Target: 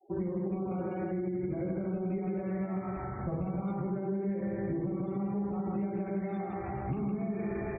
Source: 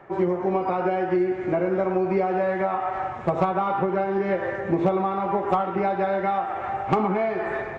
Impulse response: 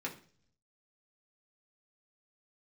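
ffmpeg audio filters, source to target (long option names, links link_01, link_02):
-filter_complex "[0:a]aecho=1:1:159|318|477|636:0.631|0.215|0.0729|0.0248,asplit=2[link_01][link_02];[1:a]atrim=start_sample=2205,adelay=36[link_03];[link_02][link_03]afir=irnorm=-1:irlink=0,volume=-6dB[link_04];[link_01][link_04]amix=inputs=2:normalize=0,alimiter=limit=-16dB:level=0:latency=1:release=18,afftfilt=real='re*gte(hypot(re,im),0.0178)':imag='im*gte(hypot(re,im),0.0178)':win_size=1024:overlap=0.75,equalizer=frequency=1100:width=0.37:gain=-14,acrossover=split=490[link_05][link_06];[link_06]acompressor=threshold=-40dB:ratio=6[link_07];[link_05][link_07]amix=inputs=2:normalize=0,bass=frequency=250:gain=5,treble=frequency=4000:gain=1,asplit=2[link_08][link_09];[link_09]adelay=15,volume=-7dB[link_10];[link_08][link_10]amix=inputs=2:normalize=0,acompressor=threshold=-30dB:ratio=6"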